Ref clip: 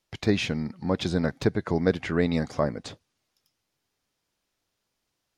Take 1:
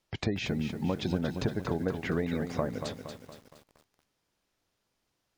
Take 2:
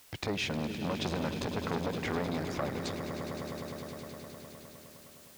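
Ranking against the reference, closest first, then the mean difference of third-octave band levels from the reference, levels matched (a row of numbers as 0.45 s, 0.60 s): 1, 2; 7.0 dB, 11.5 dB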